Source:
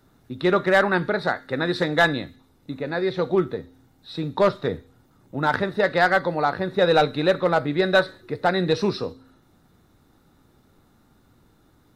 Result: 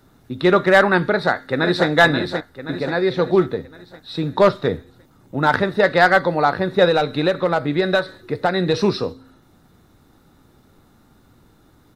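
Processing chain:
0:01.10–0:01.87: delay throw 530 ms, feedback 50%, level −6.5 dB
0:06.85–0:08.74: downward compressor, threshold −19 dBFS, peak gain reduction 7 dB
level +5 dB

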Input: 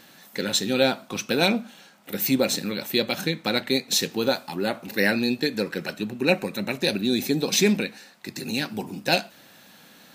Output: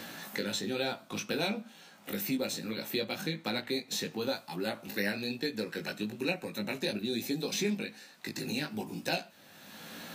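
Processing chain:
chorus effect 1.1 Hz, delay 17.5 ms, depth 2.1 ms
multiband upward and downward compressor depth 70%
level −7 dB

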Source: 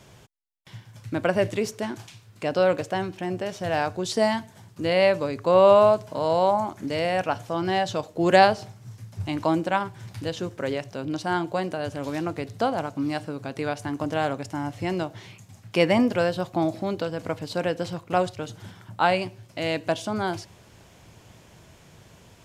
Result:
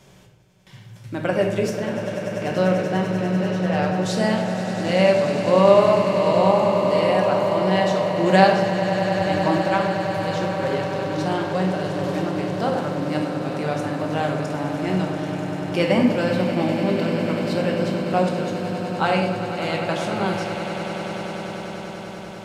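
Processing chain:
0:01.73–0:03.94: low-pass filter 4,800 Hz
echo that builds up and dies away 98 ms, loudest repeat 8, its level −13 dB
rectangular room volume 380 cubic metres, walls mixed, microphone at 1.1 metres
level −1.5 dB

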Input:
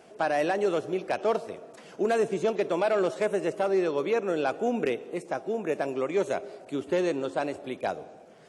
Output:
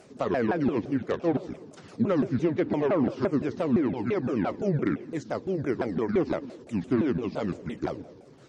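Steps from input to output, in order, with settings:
pitch shifter swept by a sawtooth −10 semitones, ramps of 171 ms
bass and treble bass +6 dB, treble +5 dB
treble cut that deepens with the level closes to 2,400 Hz, closed at −20.5 dBFS

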